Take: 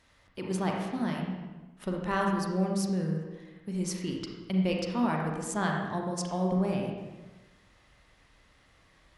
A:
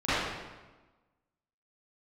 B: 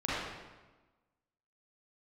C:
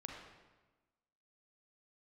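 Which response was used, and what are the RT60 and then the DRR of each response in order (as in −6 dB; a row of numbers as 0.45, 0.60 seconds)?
C; 1.2, 1.2, 1.2 seconds; −17.5, −10.0, 0.0 decibels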